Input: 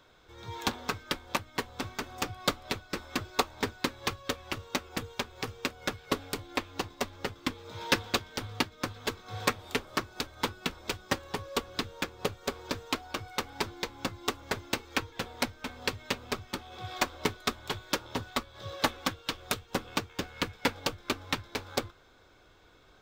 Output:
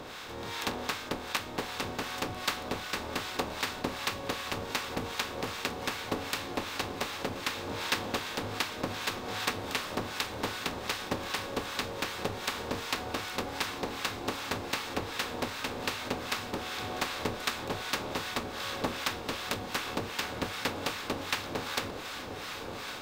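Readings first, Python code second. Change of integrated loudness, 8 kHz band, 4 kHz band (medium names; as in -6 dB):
0.0 dB, 0.0 dB, +0.5 dB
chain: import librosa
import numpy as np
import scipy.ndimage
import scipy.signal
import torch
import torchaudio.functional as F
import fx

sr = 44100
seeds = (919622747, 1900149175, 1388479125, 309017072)

y = fx.bin_compress(x, sr, power=0.4)
y = fx.echo_diffused(y, sr, ms=1028, feedback_pct=77, wet_db=-10.5)
y = fx.harmonic_tremolo(y, sr, hz=2.6, depth_pct=70, crossover_hz=920.0)
y = y * 10.0 ** (-5.0 / 20.0)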